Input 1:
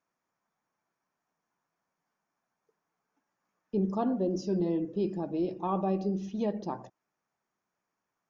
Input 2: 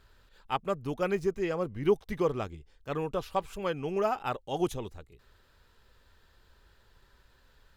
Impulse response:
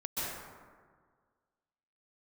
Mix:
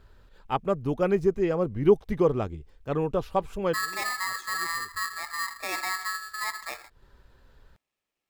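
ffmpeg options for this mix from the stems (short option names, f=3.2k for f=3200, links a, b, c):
-filter_complex "[0:a]aeval=exprs='val(0)*sgn(sin(2*PI*1500*n/s))':c=same,volume=-2dB,asplit=2[a][b];[1:a]tiltshelf=f=1.2k:g=5,volume=2dB[c];[b]apad=whole_len=342356[d];[c][d]sidechaincompress=threshold=-54dB:ratio=8:attack=16:release=201[e];[a][e]amix=inputs=2:normalize=0"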